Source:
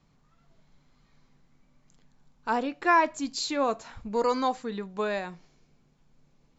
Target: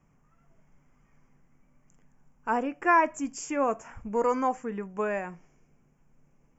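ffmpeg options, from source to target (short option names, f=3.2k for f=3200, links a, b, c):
-af "asuperstop=centerf=4000:order=4:qfactor=1.2"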